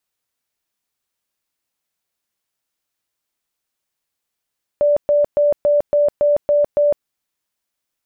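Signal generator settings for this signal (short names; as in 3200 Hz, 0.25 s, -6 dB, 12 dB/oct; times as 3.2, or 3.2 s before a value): tone bursts 585 Hz, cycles 91, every 0.28 s, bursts 8, -11 dBFS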